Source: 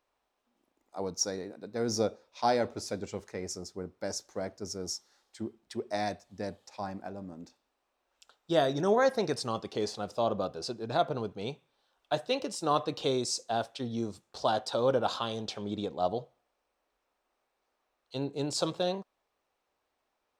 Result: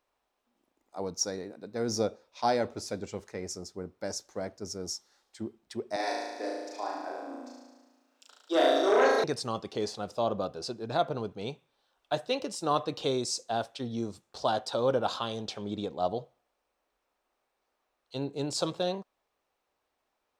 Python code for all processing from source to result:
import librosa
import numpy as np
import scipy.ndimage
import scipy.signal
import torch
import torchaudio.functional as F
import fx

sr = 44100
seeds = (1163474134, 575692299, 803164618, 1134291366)

y = fx.chain(x, sr, fx.steep_highpass(hz=250.0, slope=96),
    fx.room_flutter(wall_m=6.2, rt60_s=1.3),
    fx.transformer_sat(knee_hz=910.0), at=(5.96, 9.24))